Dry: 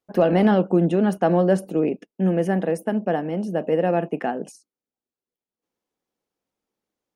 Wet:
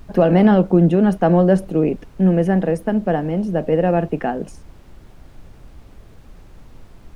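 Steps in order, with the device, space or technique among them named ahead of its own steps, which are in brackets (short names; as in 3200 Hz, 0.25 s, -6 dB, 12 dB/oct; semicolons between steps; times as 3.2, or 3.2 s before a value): car interior (bell 140 Hz +7 dB 0.77 oct; high shelf 4700 Hz -6.5 dB; brown noise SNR 21 dB); gain +3 dB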